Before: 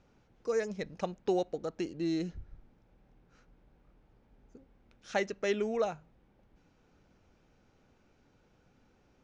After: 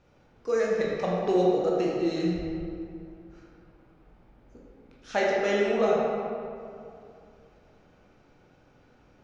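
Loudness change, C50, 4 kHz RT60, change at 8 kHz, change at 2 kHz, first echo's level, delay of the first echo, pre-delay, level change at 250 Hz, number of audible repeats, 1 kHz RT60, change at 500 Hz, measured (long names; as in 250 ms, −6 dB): +7.5 dB, −1.5 dB, 1.4 s, can't be measured, +8.0 dB, no echo audible, no echo audible, 13 ms, +7.5 dB, no echo audible, 2.5 s, +9.0 dB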